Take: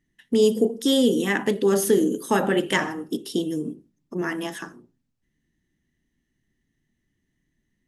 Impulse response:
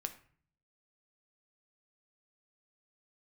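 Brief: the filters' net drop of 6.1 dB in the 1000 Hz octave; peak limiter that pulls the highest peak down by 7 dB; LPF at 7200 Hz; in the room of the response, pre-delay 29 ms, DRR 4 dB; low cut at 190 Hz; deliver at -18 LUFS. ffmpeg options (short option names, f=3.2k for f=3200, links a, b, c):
-filter_complex "[0:a]highpass=190,lowpass=7.2k,equalizer=f=1k:t=o:g=-8,alimiter=limit=-16.5dB:level=0:latency=1,asplit=2[a][b];[1:a]atrim=start_sample=2205,adelay=29[c];[b][c]afir=irnorm=-1:irlink=0,volume=-3dB[d];[a][d]amix=inputs=2:normalize=0,volume=8.5dB"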